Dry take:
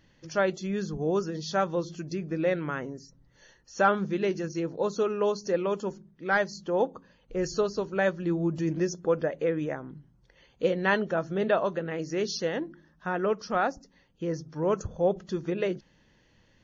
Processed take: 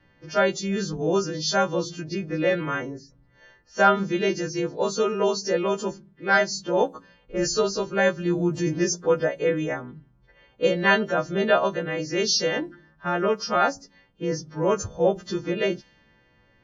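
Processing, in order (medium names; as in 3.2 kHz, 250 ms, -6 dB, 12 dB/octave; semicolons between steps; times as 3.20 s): partials quantised in pitch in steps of 2 st; level-controlled noise filter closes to 1.7 kHz, open at -24.5 dBFS; trim +4.5 dB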